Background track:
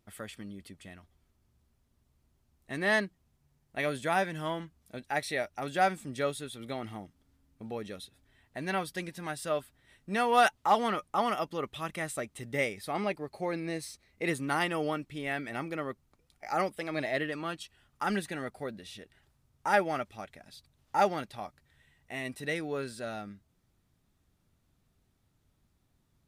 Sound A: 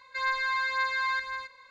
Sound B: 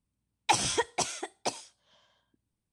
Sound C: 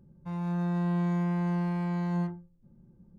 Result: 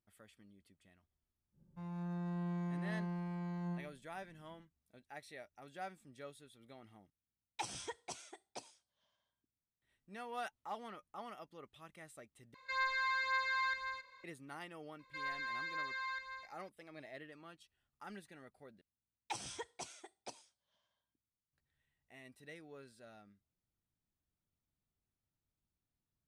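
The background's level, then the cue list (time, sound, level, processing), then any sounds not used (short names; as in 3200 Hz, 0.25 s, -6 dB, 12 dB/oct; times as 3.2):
background track -19.5 dB
1.51 add C -11.5 dB, fades 0.10 s
7.1 replace with B -17 dB
12.54 replace with A -7 dB
14.99 add A -13 dB
18.81 replace with B -17.5 dB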